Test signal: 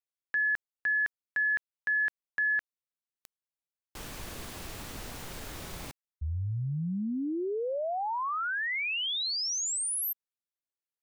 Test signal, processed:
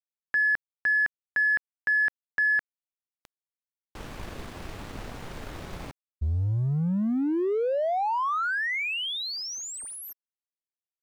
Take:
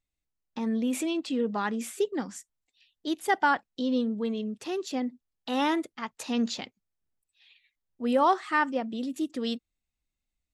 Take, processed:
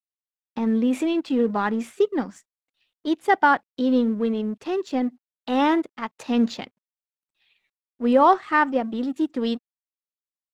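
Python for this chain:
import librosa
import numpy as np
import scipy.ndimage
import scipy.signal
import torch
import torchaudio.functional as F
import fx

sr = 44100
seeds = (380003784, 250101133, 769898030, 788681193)

y = fx.law_mismatch(x, sr, coded='A')
y = fx.lowpass(y, sr, hz=1900.0, slope=6)
y = F.gain(torch.from_numpy(y), 8.0).numpy()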